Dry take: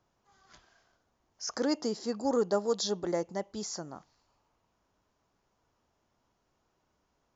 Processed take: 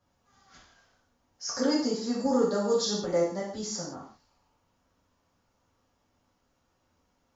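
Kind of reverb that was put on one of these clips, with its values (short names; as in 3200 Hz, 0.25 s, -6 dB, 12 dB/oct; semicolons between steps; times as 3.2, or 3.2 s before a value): non-linear reverb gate 0.2 s falling, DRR -7 dB; gain -4.5 dB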